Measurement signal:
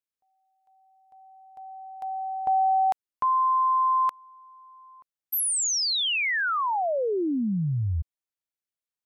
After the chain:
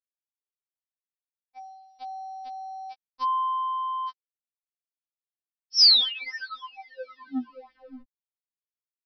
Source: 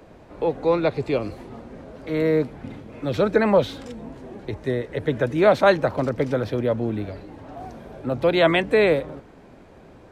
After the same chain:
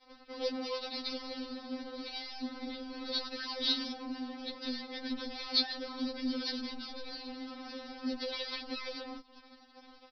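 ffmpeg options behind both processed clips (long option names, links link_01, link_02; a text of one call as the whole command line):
ffmpeg -i in.wav -filter_complex "[0:a]asplit=2[link_01][link_02];[link_02]aeval=exprs='(mod(7.94*val(0)+1,2)-1)/7.94':channel_layout=same,volume=-10.5dB[link_03];[link_01][link_03]amix=inputs=2:normalize=0,acompressor=threshold=-32dB:ratio=12:attack=0.3:release=56:knee=1:detection=peak,aexciter=amount=9.9:drive=4.4:freq=4000,adynamicequalizer=threshold=0.00398:dfrequency=740:dqfactor=0.87:tfrequency=740:tqfactor=0.87:attack=5:release=100:ratio=0.417:range=3:mode=cutabove:tftype=bell,aresample=11025,aeval=exprs='sgn(val(0))*max(abs(val(0))-0.00891,0)':channel_layout=same,aresample=44100,afftfilt=real='re*3.46*eq(mod(b,12),0)':imag='im*3.46*eq(mod(b,12),0)':win_size=2048:overlap=0.75,volume=7dB" out.wav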